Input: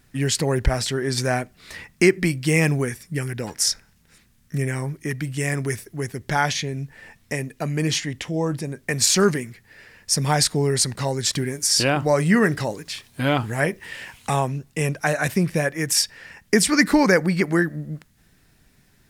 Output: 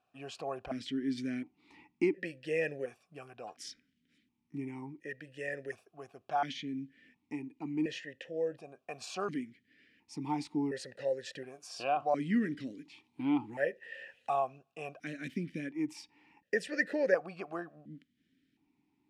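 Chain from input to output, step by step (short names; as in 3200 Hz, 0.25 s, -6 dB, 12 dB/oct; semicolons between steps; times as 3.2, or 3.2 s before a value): bell 2200 Hz -8.5 dB 0.21 oct; vowel sequencer 1.4 Hz; gain -1.5 dB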